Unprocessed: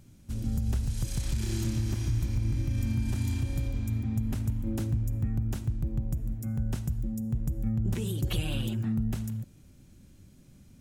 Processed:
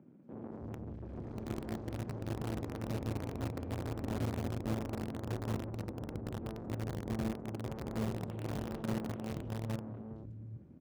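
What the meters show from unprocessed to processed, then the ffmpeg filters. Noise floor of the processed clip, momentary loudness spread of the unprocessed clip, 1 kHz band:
-49 dBFS, 3 LU, +6.0 dB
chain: -filter_complex "[0:a]aeval=exprs='(tanh(158*val(0)+0.7)-tanh(0.7))/158':c=same,asplit=2[a][b];[b]aecho=0:1:811:0.668[c];[a][c]amix=inputs=2:normalize=0,adynamicsmooth=sensitivity=1.5:basefreq=880,highpass=110,acrossover=split=170|3200[d][e][f];[f]adelay=220[g];[d]adelay=320[h];[h][e][g]amix=inputs=3:normalize=0,asplit=2[i][j];[j]acrusher=bits=6:mix=0:aa=0.000001,volume=-5.5dB[k];[i][k]amix=inputs=2:normalize=0,volume=8dB"

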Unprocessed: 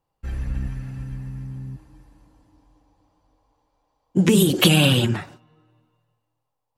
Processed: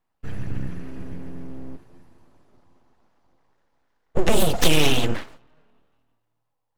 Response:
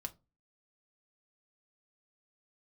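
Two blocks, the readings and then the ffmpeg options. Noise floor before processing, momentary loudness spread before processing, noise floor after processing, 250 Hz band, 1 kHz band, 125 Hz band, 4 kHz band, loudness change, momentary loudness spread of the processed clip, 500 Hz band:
-79 dBFS, 19 LU, -76 dBFS, -7.0 dB, +2.5 dB, -8.0 dB, -3.5 dB, -3.5 dB, 20 LU, -1.0 dB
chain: -filter_complex "[0:a]aeval=exprs='abs(val(0))':c=same,asplit=2[a][b];[1:a]atrim=start_sample=2205,lowpass=5.2k[c];[b][c]afir=irnorm=-1:irlink=0,volume=-6.5dB[d];[a][d]amix=inputs=2:normalize=0,volume=-2dB"

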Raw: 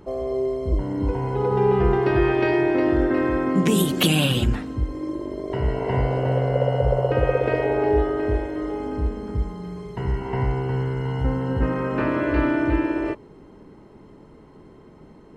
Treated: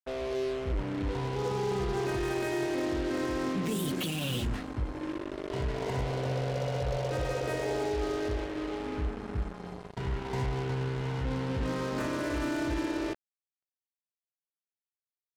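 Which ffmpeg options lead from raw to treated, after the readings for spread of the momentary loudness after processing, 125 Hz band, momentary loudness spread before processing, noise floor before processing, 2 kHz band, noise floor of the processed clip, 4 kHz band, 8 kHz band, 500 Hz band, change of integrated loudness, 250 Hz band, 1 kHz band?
5 LU, -9.5 dB, 9 LU, -48 dBFS, -8.5 dB, under -85 dBFS, -9.0 dB, -7.0 dB, -10.5 dB, -10.0 dB, -10.0 dB, -9.0 dB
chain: -af "alimiter=limit=-16.5dB:level=0:latency=1:release=14,acrusher=bits=4:mix=0:aa=0.5,volume=-7.5dB"

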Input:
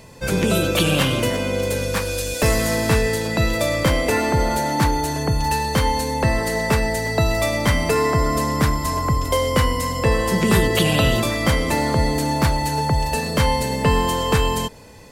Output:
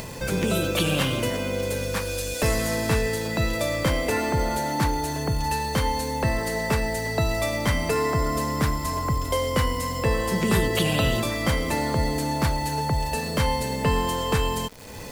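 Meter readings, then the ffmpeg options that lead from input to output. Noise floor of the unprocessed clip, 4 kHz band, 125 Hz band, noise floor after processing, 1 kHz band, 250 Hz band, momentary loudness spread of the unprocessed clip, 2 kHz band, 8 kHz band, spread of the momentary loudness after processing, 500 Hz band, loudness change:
-26 dBFS, -5.0 dB, -5.0 dB, -30 dBFS, -5.0 dB, -5.0 dB, 4 LU, -5.0 dB, -4.5 dB, 4 LU, -5.0 dB, -5.0 dB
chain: -af "acompressor=mode=upward:threshold=-20dB:ratio=2.5,acrusher=bits=7:dc=4:mix=0:aa=0.000001,volume=-5dB"

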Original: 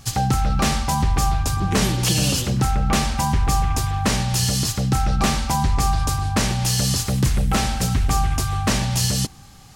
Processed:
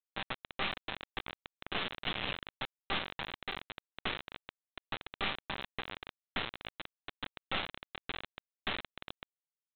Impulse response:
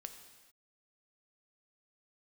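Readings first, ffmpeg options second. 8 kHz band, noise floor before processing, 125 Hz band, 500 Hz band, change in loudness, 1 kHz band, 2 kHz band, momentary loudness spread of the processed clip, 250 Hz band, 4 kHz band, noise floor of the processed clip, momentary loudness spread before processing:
under -40 dB, -43 dBFS, -33.5 dB, -16.0 dB, -19.0 dB, -19.5 dB, -9.5 dB, 13 LU, -25.0 dB, -13.5 dB, under -85 dBFS, 2 LU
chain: -filter_complex "[0:a]aderivative,aecho=1:1:62|124:0.0891|0.0241,acrossover=split=430[a][b];[b]acompressor=threshold=-49dB:ratio=1.5[c];[a][c]amix=inputs=2:normalize=0,aresample=8000,acrusher=bits=4:dc=4:mix=0:aa=0.000001,aresample=44100,volume=11.5dB"

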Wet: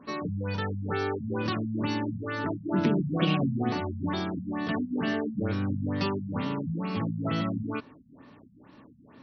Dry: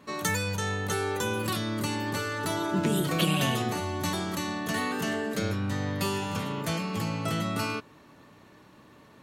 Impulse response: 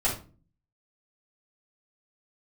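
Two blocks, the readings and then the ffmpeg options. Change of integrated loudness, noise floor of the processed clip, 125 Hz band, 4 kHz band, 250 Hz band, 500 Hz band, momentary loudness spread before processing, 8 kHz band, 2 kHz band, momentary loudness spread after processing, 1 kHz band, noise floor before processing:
-0.5 dB, -55 dBFS, +0.5 dB, -6.0 dB, +2.0 dB, -1.0 dB, 5 LU, under -20 dB, -4.5 dB, 6 LU, -3.0 dB, -55 dBFS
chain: -af "equalizer=f=260:w=4.5:g=8.5,afftfilt=real='re*lt(b*sr/1024,220*pow(6200/220,0.5+0.5*sin(2*PI*2.2*pts/sr)))':imag='im*lt(b*sr/1024,220*pow(6200/220,0.5+0.5*sin(2*PI*2.2*pts/sr)))':win_size=1024:overlap=0.75"

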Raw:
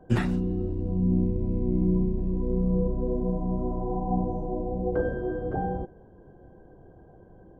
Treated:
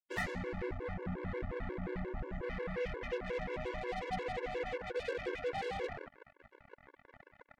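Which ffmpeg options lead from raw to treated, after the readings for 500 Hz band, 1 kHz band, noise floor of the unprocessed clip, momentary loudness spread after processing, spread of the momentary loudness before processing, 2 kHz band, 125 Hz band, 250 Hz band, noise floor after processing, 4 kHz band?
-7.5 dB, -6.5 dB, -52 dBFS, 4 LU, 6 LU, +2.0 dB, -17.5 dB, -18.0 dB, -72 dBFS, n/a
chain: -filter_complex "[0:a]lowshelf=f=370:t=q:w=3:g=-7,asplit=2[a][b];[b]asplit=5[c][d][e][f][g];[c]adelay=114,afreqshift=-34,volume=-16dB[h];[d]adelay=228,afreqshift=-68,volume=-21.7dB[i];[e]adelay=342,afreqshift=-102,volume=-27.4dB[j];[f]adelay=456,afreqshift=-136,volume=-33dB[k];[g]adelay=570,afreqshift=-170,volume=-38.7dB[l];[h][i][j][k][l]amix=inputs=5:normalize=0[m];[a][m]amix=inputs=2:normalize=0,aresample=16000,aresample=44100,areverse,acompressor=threshold=-40dB:ratio=6,areverse,acrusher=bits=6:mix=0:aa=0.5,equalizer=f=2k:t=o:w=0.45:g=9,afftfilt=real='re*gt(sin(2*PI*5.6*pts/sr)*(1-2*mod(floor(b*sr/1024/290),2)),0)':imag='im*gt(sin(2*PI*5.6*pts/sr)*(1-2*mod(floor(b*sr/1024/290),2)),0)':win_size=1024:overlap=0.75,volume=5dB"

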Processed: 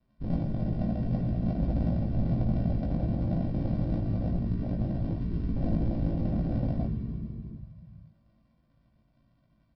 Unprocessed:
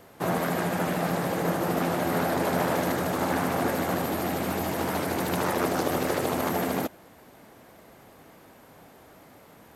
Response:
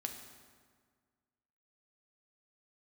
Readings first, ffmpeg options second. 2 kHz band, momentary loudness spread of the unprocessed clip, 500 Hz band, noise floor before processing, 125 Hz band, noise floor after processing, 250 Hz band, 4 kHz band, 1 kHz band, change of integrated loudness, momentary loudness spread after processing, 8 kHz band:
under -20 dB, 3 LU, -12.5 dB, -53 dBFS, +6.0 dB, -68 dBFS, -1.0 dB, under -20 dB, -18.0 dB, -3.0 dB, 7 LU, under -40 dB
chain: -filter_complex "[0:a]aemphasis=mode=reproduction:type=75kf,aresample=11025,acrusher=samples=26:mix=1:aa=0.000001,aresample=44100,equalizer=f=3.8k:w=0.36:g=-4,asplit=2[a][b];[b]adelay=454.8,volume=-15dB,highshelf=f=4k:g=-10.2[c];[a][c]amix=inputs=2:normalize=0[d];[1:a]atrim=start_sample=2205,asetrate=23373,aresample=44100[e];[d][e]afir=irnorm=-1:irlink=0,afwtdn=0.0501,asplit=2[f][g];[g]asoftclip=type=tanh:threshold=-28dB,volume=-11.5dB[h];[f][h]amix=inputs=2:normalize=0,asplit=2[i][j];[j]adelay=18,volume=-4dB[k];[i][k]amix=inputs=2:normalize=0,volume=-5.5dB"

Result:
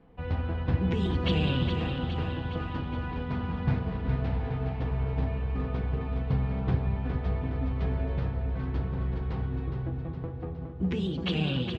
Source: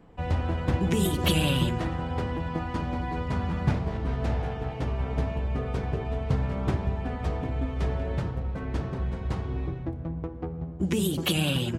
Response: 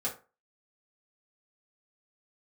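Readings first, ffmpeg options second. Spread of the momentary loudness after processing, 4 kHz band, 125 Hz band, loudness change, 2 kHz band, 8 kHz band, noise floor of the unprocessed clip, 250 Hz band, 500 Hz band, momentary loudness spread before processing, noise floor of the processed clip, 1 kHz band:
6 LU, -5.0 dB, -0.5 dB, -1.5 dB, -3.5 dB, n/a, -36 dBFS, -2.0 dB, -3.5 dB, 8 LU, -37 dBFS, -4.5 dB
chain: -filter_complex "[0:a]lowpass=f=4.3k:w=0.5412,lowpass=f=4.3k:w=1.3066,aecho=1:1:414|828|1242|1656|2070|2484|2898:0.473|0.27|0.154|0.0876|0.0499|0.0285|0.0162,asplit=2[a][b];[1:a]atrim=start_sample=2205,lowshelf=f=230:g=8.5[c];[b][c]afir=irnorm=-1:irlink=0,volume=-10.5dB[d];[a][d]amix=inputs=2:normalize=0,volume=-7dB"

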